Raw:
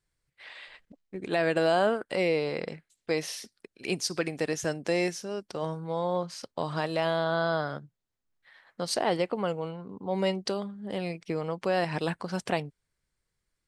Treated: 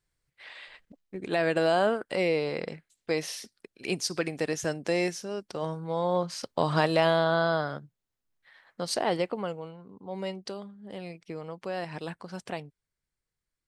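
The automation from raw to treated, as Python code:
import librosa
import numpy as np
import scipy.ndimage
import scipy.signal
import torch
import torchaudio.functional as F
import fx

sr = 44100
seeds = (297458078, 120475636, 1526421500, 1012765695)

y = fx.gain(x, sr, db=fx.line((5.79, 0.0), (6.77, 6.5), (7.8, -0.5), (9.25, -0.5), (9.71, -7.0)))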